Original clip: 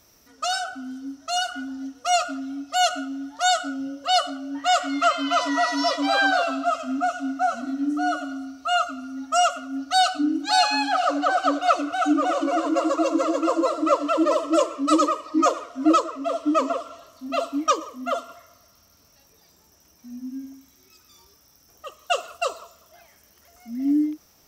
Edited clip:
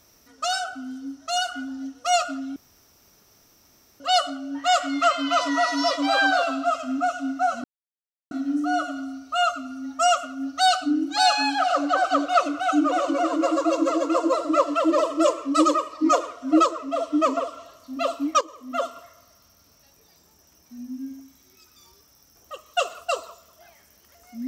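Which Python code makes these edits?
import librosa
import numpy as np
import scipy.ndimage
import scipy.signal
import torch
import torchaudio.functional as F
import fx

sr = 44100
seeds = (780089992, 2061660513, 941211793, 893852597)

y = fx.edit(x, sr, fx.room_tone_fill(start_s=2.56, length_s=1.44),
    fx.insert_silence(at_s=7.64, length_s=0.67),
    fx.fade_in_from(start_s=17.74, length_s=0.4, floor_db=-13.5), tone=tone)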